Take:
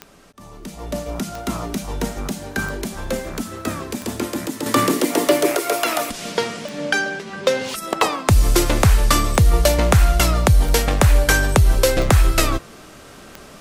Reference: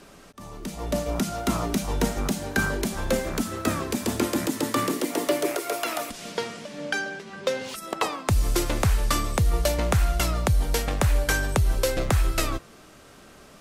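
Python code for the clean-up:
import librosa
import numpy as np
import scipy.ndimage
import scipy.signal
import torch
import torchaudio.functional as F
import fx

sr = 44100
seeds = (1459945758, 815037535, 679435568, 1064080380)

y = fx.fix_declick_ar(x, sr, threshold=10.0)
y = fx.fix_level(y, sr, at_s=4.66, step_db=-8.0)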